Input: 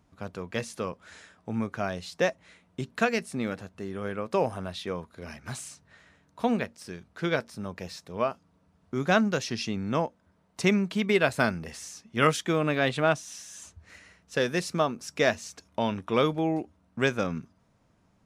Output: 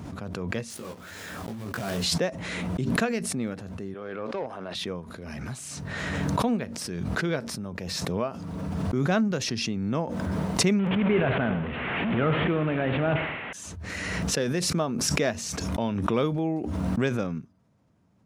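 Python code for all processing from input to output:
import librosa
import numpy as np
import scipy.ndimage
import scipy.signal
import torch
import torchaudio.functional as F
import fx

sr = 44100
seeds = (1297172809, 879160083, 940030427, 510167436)

y = fx.chain(x, sr, fx.block_float(bits=3),
    fx.over_compress(threshold_db=-33.0, ratio=-0.5),
    fx.detune_double(cents=37), at=(0.7, 2.04))
y = fx.chain(y, sr, fx.bandpass_edges(low_hz=390.0, high_hz=4200.0),
    fx.tube_stage(drive_db=22.0, bias=0.4), at=(3.94, 4.75))
y = fx.chain(y, sr, fx.delta_mod(bps=16000, step_db=-25.5),
    fx.echo_feedback(ms=77, feedback_pct=53, wet_db=-12.5),
    fx.sustainer(db_per_s=35.0), at=(10.79, 13.53))
y = scipy.signal.sosfilt(scipy.signal.butter(2, 79.0, 'highpass', fs=sr, output='sos'), y)
y = fx.low_shelf(y, sr, hz=460.0, db=8.5)
y = fx.pre_swell(y, sr, db_per_s=21.0)
y = F.gain(torch.from_numpy(y), -6.0).numpy()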